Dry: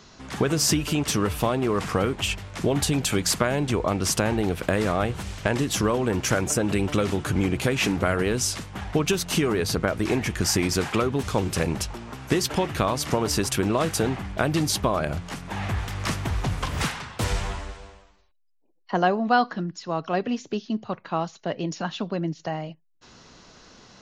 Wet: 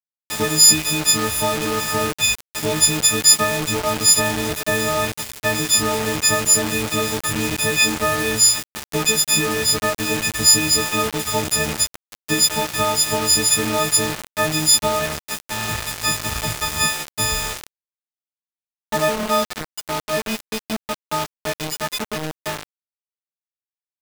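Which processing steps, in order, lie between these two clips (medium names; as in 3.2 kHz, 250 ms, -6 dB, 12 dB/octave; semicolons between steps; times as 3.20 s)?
partials quantised in pitch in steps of 6 st; bit crusher 4-bit; trim -1 dB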